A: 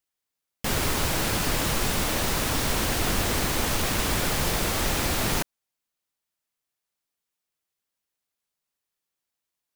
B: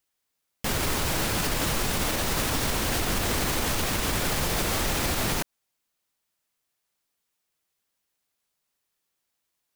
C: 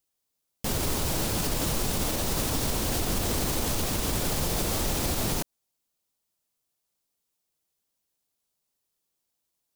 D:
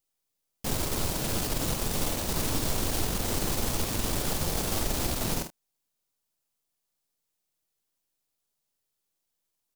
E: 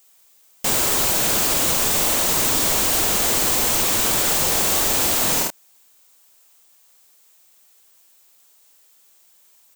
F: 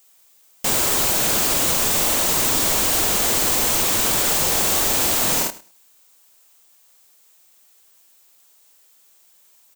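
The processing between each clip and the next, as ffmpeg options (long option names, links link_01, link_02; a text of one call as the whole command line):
ffmpeg -i in.wav -af "alimiter=limit=-22dB:level=0:latency=1:release=118,volume=5.5dB" out.wav
ffmpeg -i in.wav -af "equalizer=frequency=1800:width=0.76:gain=-8" out.wav
ffmpeg -i in.wav -af "aeval=exprs='if(lt(val(0),0),0.447*val(0),val(0))':channel_layout=same,aecho=1:1:48|78:0.422|0.15" out.wav
ffmpeg -i in.wav -filter_complex "[0:a]asplit=2[link_01][link_02];[link_02]highpass=frequency=720:poles=1,volume=31dB,asoftclip=type=tanh:threshold=-14dB[link_03];[link_01][link_03]amix=inputs=2:normalize=0,lowpass=frequency=6500:poles=1,volume=-6dB,aexciter=amount=2.3:drive=2.1:freq=6800" out.wav
ffmpeg -i in.wav -af "aecho=1:1:104|208:0.119|0.0178" out.wav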